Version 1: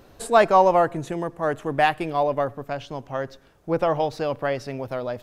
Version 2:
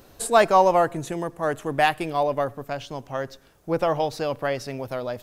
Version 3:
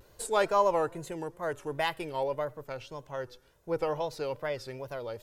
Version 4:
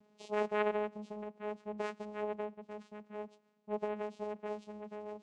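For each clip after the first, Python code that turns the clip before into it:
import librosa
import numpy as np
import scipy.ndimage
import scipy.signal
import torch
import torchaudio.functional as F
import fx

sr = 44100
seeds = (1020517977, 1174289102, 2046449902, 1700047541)

y1 = fx.high_shelf(x, sr, hz=5100.0, db=10.0)
y1 = F.gain(torch.from_numpy(y1), -1.0).numpy()
y2 = y1 + 0.48 * np.pad(y1, (int(2.1 * sr / 1000.0), 0))[:len(y1)]
y2 = fx.wow_flutter(y2, sr, seeds[0], rate_hz=2.1, depth_cents=130.0)
y2 = F.gain(torch.from_numpy(y2), -9.0).numpy()
y3 = fx.freq_compress(y2, sr, knee_hz=2600.0, ratio=1.5)
y3 = fx.vocoder(y3, sr, bands=4, carrier='saw', carrier_hz=210.0)
y3 = F.gain(torch.from_numpy(y3), -6.5).numpy()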